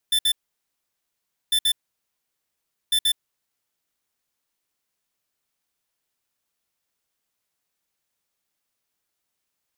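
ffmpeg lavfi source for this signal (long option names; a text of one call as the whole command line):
ffmpeg -f lavfi -i "aevalsrc='0.106*(2*lt(mod(3530*t,1),0.5)-1)*clip(min(mod(mod(t,1.4),0.13),0.07-mod(mod(t,1.4),0.13))/0.005,0,1)*lt(mod(t,1.4),0.26)':duration=4.2:sample_rate=44100" out.wav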